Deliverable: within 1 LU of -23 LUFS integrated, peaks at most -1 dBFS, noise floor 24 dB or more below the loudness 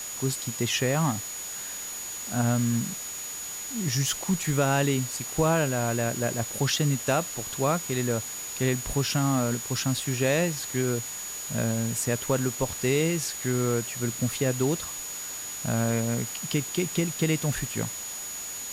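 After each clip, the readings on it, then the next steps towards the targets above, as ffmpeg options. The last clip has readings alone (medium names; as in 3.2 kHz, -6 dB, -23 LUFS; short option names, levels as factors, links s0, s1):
steady tone 6.8 kHz; tone level -35 dBFS; noise floor -36 dBFS; noise floor target -52 dBFS; loudness -27.5 LUFS; peak level -12.5 dBFS; loudness target -23.0 LUFS
-> -af "bandreject=f=6800:w=30"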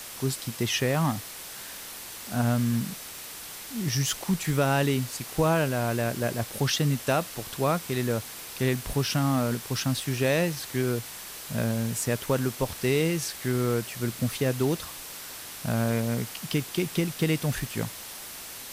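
steady tone not found; noise floor -41 dBFS; noise floor target -52 dBFS
-> -af "afftdn=nr=11:nf=-41"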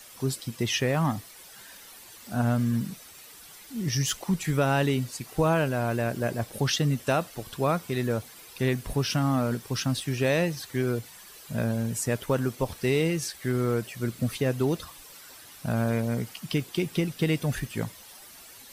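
noise floor -48 dBFS; noise floor target -52 dBFS
-> -af "afftdn=nr=6:nf=-48"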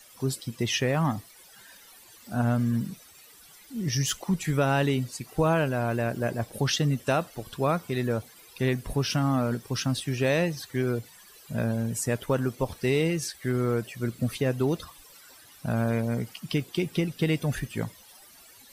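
noise floor -53 dBFS; loudness -28.0 LUFS; peak level -13.5 dBFS; loudness target -23.0 LUFS
-> -af "volume=1.78"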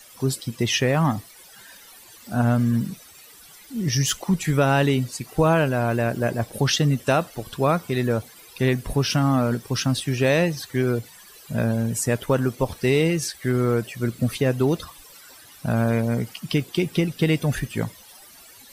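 loudness -23.0 LUFS; peak level -8.5 dBFS; noise floor -48 dBFS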